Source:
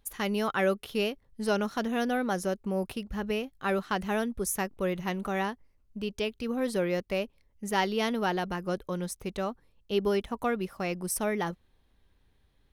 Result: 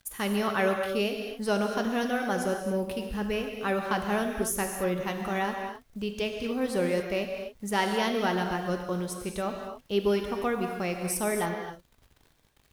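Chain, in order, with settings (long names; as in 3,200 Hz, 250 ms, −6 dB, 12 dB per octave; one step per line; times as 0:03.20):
bit-depth reduction 10 bits, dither none
reverb whose tail is shaped and stops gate 300 ms flat, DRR 3 dB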